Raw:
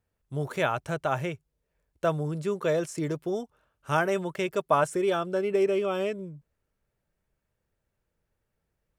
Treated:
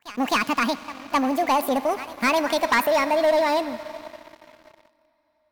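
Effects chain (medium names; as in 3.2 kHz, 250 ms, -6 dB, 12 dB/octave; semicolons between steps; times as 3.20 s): gliding tape speed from 183% -> 143%; pre-echo 261 ms -19 dB; reverberation RT60 5.3 s, pre-delay 52 ms, DRR 15.5 dB; waveshaping leveller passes 3; trim -3 dB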